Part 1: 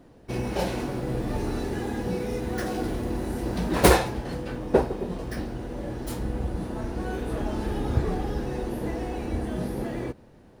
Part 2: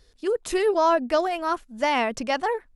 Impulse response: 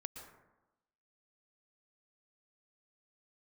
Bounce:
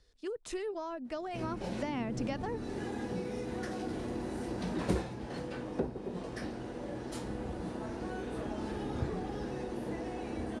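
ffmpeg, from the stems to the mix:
-filter_complex "[0:a]highpass=f=220:p=1,adelay=1050,volume=-3.5dB[a];[1:a]volume=-2dB,afade=t=in:st=1.09:d=0.44:silence=0.421697[b];[a][b]amix=inputs=2:normalize=0,lowpass=f=9.4k:w=0.5412,lowpass=f=9.4k:w=1.3066,acrossover=split=280[c][d];[d]acompressor=threshold=-38dB:ratio=8[e];[c][e]amix=inputs=2:normalize=0"

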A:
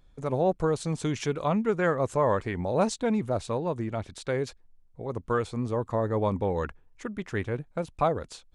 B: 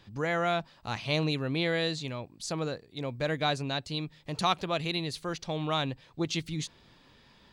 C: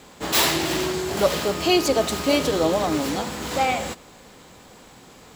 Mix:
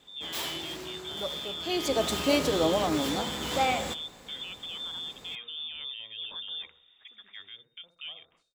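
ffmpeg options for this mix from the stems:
-filter_complex "[0:a]agate=range=-33dB:threshold=-46dB:ratio=3:detection=peak,lowshelf=f=340:g=-7.5,volume=-13dB,asplit=2[a][b];[b]volume=-20.5dB[c];[1:a]tiltshelf=f=790:g=5.5,volume=-6dB[d];[2:a]volume=-4.5dB,afade=t=in:st=1.63:d=0.47:silence=0.251189[e];[a][d]amix=inputs=2:normalize=0,lowpass=f=3.1k:t=q:w=0.5098,lowpass=f=3.1k:t=q:w=0.6013,lowpass=f=3.1k:t=q:w=0.9,lowpass=f=3.1k:t=q:w=2.563,afreqshift=-3700,alimiter=level_in=6.5dB:limit=-24dB:level=0:latency=1:release=20,volume=-6.5dB,volume=0dB[f];[c]aecho=0:1:63|126|189|252|315|378:1|0.45|0.202|0.0911|0.041|0.0185[g];[e][f][g]amix=inputs=3:normalize=0"

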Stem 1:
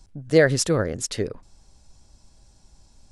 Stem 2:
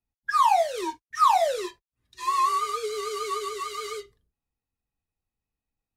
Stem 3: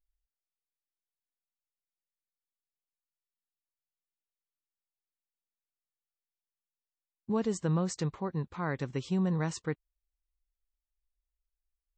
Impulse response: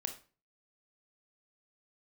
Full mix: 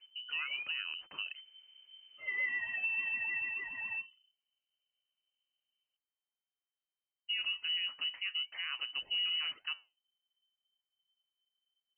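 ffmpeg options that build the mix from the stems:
-filter_complex "[0:a]acompressor=threshold=-26dB:ratio=6,volume=-8.5dB,asplit=2[a][b];[1:a]equalizer=f=1.7k:w=0.91:g=-14.5,volume=-1dB,asplit=3[c][d][e];[c]atrim=end=0.71,asetpts=PTS-STARTPTS,afade=t=out:st=0.706:d=0.004:c=hsin[f];[d]atrim=start=0.71:end=1.91,asetpts=PTS-STARTPTS,volume=0[g];[e]atrim=start=1.91,asetpts=PTS-STARTPTS,afade=t=in:d=0.004:c=hsin[h];[f][g][h]concat=n=3:v=0:a=1[i];[2:a]flanger=delay=6.7:depth=4.2:regen=-79:speed=1.8:shape=sinusoidal,volume=2.5dB[j];[b]apad=whole_len=263153[k];[i][k]sidechaincompress=threshold=-49dB:ratio=8:attack=31:release=1290[l];[a][l][j]amix=inputs=3:normalize=0,lowpass=f=2.6k:t=q:w=0.5098,lowpass=f=2.6k:t=q:w=0.6013,lowpass=f=2.6k:t=q:w=0.9,lowpass=f=2.6k:t=q:w=2.563,afreqshift=-3100,alimiter=level_in=3.5dB:limit=-24dB:level=0:latency=1:release=59,volume=-3.5dB"

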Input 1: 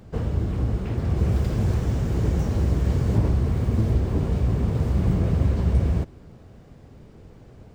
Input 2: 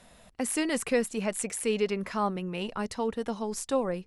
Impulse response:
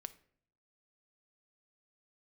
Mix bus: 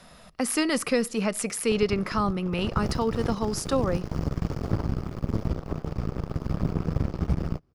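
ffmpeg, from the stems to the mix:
-filter_complex "[0:a]bandreject=f=3.9k:w=15,aeval=exprs='0.447*(cos(1*acos(clip(val(0)/0.447,-1,1)))-cos(1*PI/2))+0.00631*(cos(3*acos(clip(val(0)/0.447,-1,1)))-cos(3*PI/2))+0.0355*(cos(6*acos(clip(val(0)/0.447,-1,1)))-cos(6*PI/2))+0.0708*(cos(7*acos(clip(val(0)/0.447,-1,1)))-cos(7*PI/2))':c=same,adelay=1550,volume=-6dB[a];[1:a]volume=1dB,asplit=2[b][c];[c]volume=-3dB[d];[2:a]atrim=start_sample=2205[e];[d][e]afir=irnorm=-1:irlink=0[f];[a][b][f]amix=inputs=3:normalize=0,equalizer=f=160:t=o:w=0.33:g=5,equalizer=f=1.25k:t=o:w=0.33:g=8,equalizer=f=5k:t=o:w=0.33:g=7,equalizer=f=8k:t=o:w=0.33:g=-6,acrossover=split=400|3000[g][h][i];[h]acompressor=threshold=-25dB:ratio=6[j];[g][j][i]amix=inputs=3:normalize=0"

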